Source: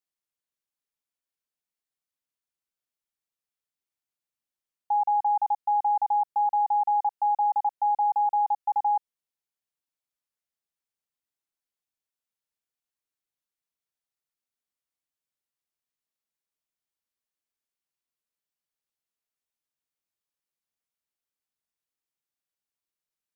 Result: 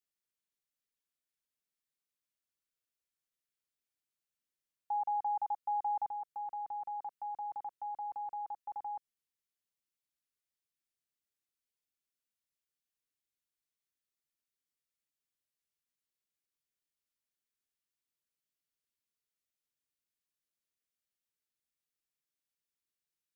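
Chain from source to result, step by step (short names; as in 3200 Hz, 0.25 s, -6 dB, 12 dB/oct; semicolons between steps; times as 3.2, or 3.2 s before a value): bell 830 Hz -8 dB 0.71 oct, from 6.06 s -14.5 dB; gain -2 dB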